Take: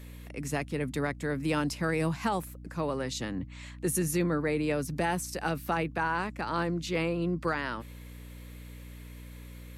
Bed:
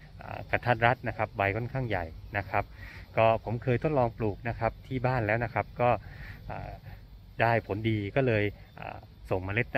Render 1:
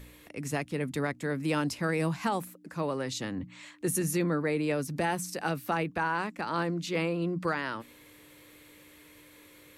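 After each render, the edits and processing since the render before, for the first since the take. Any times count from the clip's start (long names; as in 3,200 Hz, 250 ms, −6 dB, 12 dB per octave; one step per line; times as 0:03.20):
hum removal 60 Hz, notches 4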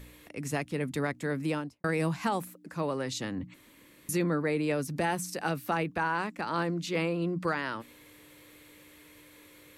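0:01.40–0:01.84: fade out and dull
0:03.54–0:04.09: fill with room tone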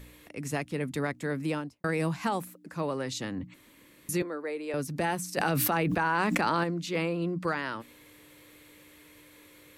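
0:04.22–0:04.74: four-pole ladder high-pass 290 Hz, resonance 25%
0:05.37–0:06.64: envelope flattener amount 100%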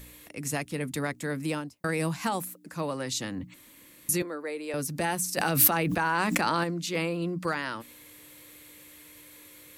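high-shelf EQ 5,100 Hz +10.5 dB
notch filter 410 Hz, Q 12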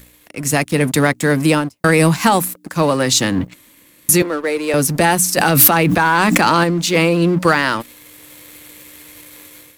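leveller curve on the samples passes 2
automatic gain control gain up to 12 dB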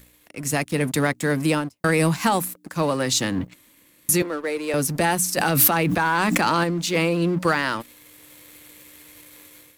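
level −7 dB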